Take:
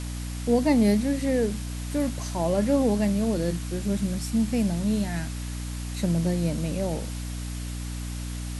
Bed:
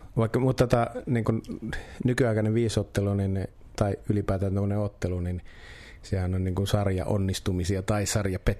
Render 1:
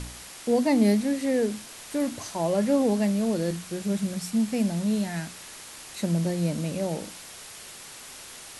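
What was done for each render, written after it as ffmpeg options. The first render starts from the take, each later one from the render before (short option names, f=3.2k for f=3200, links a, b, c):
-af "bandreject=f=60:t=h:w=4,bandreject=f=120:t=h:w=4,bandreject=f=180:t=h:w=4,bandreject=f=240:t=h:w=4,bandreject=f=300:t=h:w=4"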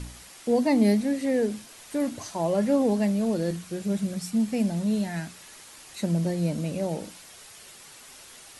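-af "afftdn=nr=6:nf=-44"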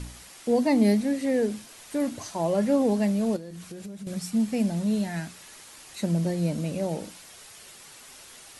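-filter_complex "[0:a]asettb=1/sr,asplit=3[a][b][c];[a]atrim=end=3.364[d];[b]atrim=start=3.36:end=4.07,asetpts=PTS-STARTPTS,afade=t=in:d=0.004:c=qsin,afade=t=out:st=0.706:d=0.004:c=qsin,acompressor=threshold=-35dB:ratio=16:attack=3.2:release=140:knee=1:detection=peak[e];[c]atrim=start=4.066[f];[d][e]acrossfade=d=0.004:c1=hsin:c2=qsin[g];[g][f]acrossfade=d=0.004:c1=qsin:c2=hsin"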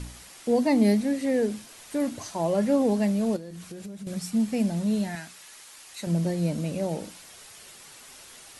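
-filter_complex "[0:a]asettb=1/sr,asplit=3[a][b][c];[a]atrim=end=5.154[d];[b]atrim=start=5.15:end=6.07,asetpts=PTS-STARTPTS,afade=t=in:d=0.004:c=qsin,afade=t=out:st=0.916:d=0.004:c=qsin,lowshelf=f=490:g=-11.5[e];[c]atrim=start=6.066[f];[d][e]acrossfade=d=0.004:c1=hsin:c2=qsin[g];[g][f]acrossfade=d=0.004:c1=qsin:c2=hsin"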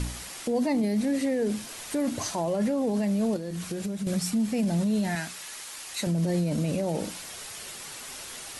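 -filter_complex "[0:a]asplit=2[a][b];[b]acompressor=threshold=-31dB:ratio=6,volume=2.5dB[c];[a][c]amix=inputs=2:normalize=0,alimiter=limit=-19.5dB:level=0:latency=1:release=13"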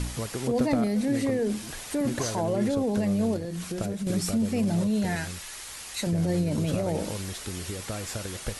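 -filter_complex "[1:a]volume=-9dB[a];[0:a][a]amix=inputs=2:normalize=0"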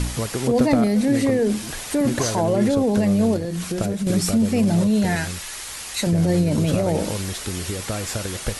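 -af "volume=7dB"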